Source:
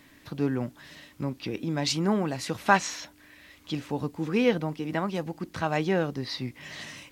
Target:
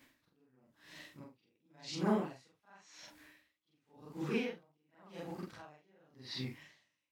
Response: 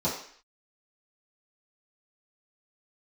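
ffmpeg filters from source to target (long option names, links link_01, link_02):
-filter_complex "[0:a]afftfilt=real='re':imag='-im':win_size=4096:overlap=0.75,acrossover=split=7700[link_01][link_02];[link_02]acompressor=threshold=-58dB:ratio=4:attack=1:release=60[link_03];[link_01][link_03]amix=inputs=2:normalize=0,lowshelf=frequency=320:gain=-5,flanger=delay=8:depth=9.3:regen=-50:speed=1.6:shape=sinusoidal,aeval=exprs='val(0)*pow(10,-38*(0.5-0.5*cos(2*PI*0.92*n/s))/20)':channel_layout=same,volume=4.5dB"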